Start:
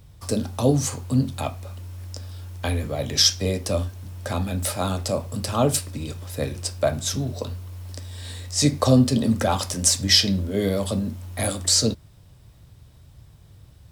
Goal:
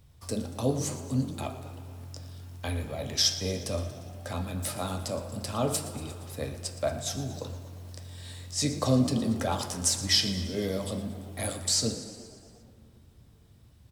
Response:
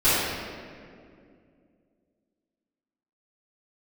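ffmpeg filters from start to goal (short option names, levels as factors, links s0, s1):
-filter_complex "[0:a]bandreject=f=48.87:t=h:w=4,bandreject=f=97.74:t=h:w=4,bandreject=f=146.61:t=h:w=4,bandreject=f=195.48:t=h:w=4,bandreject=f=244.35:t=h:w=4,bandreject=f=293.22:t=h:w=4,bandreject=f=342.09:t=h:w=4,bandreject=f=390.96:t=h:w=4,bandreject=f=439.83:t=h:w=4,bandreject=f=488.7:t=h:w=4,bandreject=f=537.57:t=h:w=4,bandreject=f=586.44:t=h:w=4,bandreject=f=635.31:t=h:w=4,bandreject=f=684.18:t=h:w=4,bandreject=f=733.05:t=h:w=4,bandreject=f=781.92:t=h:w=4,bandreject=f=830.79:t=h:w=4,bandreject=f=879.66:t=h:w=4,bandreject=f=928.53:t=h:w=4,bandreject=f=977.4:t=h:w=4,bandreject=f=1026.27:t=h:w=4,bandreject=f=1075.14:t=h:w=4,bandreject=f=1124.01:t=h:w=4,bandreject=f=1172.88:t=h:w=4,bandreject=f=1221.75:t=h:w=4,bandreject=f=1270.62:t=h:w=4,bandreject=f=1319.49:t=h:w=4,bandreject=f=1368.36:t=h:w=4,bandreject=f=1417.23:t=h:w=4,bandreject=f=1466.1:t=h:w=4,bandreject=f=1514.97:t=h:w=4,bandreject=f=1563.84:t=h:w=4,bandreject=f=1612.71:t=h:w=4,bandreject=f=1661.58:t=h:w=4,asplit=8[s0][s1][s2][s3][s4][s5][s6][s7];[s1]adelay=117,afreqshift=43,volume=0.168[s8];[s2]adelay=234,afreqshift=86,volume=0.106[s9];[s3]adelay=351,afreqshift=129,volume=0.0668[s10];[s4]adelay=468,afreqshift=172,volume=0.0422[s11];[s5]adelay=585,afreqshift=215,volume=0.0263[s12];[s6]adelay=702,afreqshift=258,volume=0.0166[s13];[s7]adelay=819,afreqshift=301,volume=0.0105[s14];[s0][s8][s9][s10][s11][s12][s13][s14]amix=inputs=8:normalize=0,asplit=2[s15][s16];[1:a]atrim=start_sample=2205,asetrate=26019,aresample=44100,lowshelf=f=380:g=-12[s17];[s16][s17]afir=irnorm=-1:irlink=0,volume=0.0251[s18];[s15][s18]amix=inputs=2:normalize=0,volume=0.422"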